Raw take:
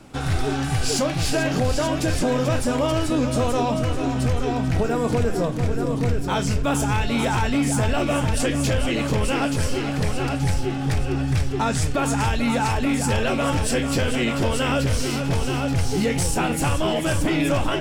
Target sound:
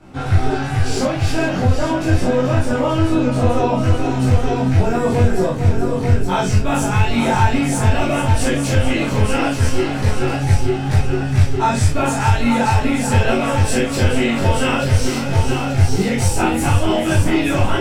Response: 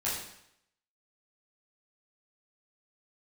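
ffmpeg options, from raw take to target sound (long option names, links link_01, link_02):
-filter_complex "[0:a]asetnsamples=nb_out_samples=441:pad=0,asendcmd='3.79 highshelf g -3.5',highshelf=frequency=3800:gain=-11[link_01];[1:a]atrim=start_sample=2205,atrim=end_sample=3528[link_02];[link_01][link_02]afir=irnorm=-1:irlink=0"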